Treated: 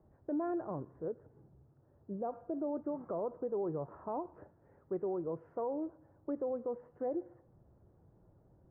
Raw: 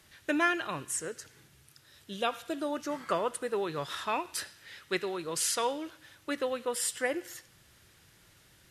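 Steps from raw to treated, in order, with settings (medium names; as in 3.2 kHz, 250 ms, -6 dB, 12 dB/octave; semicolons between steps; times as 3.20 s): inverse Chebyshev low-pass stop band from 3.5 kHz, stop band 70 dB; peak limiter -30 dBFS, peak gain reduction 9.5 dB; trim +1 dB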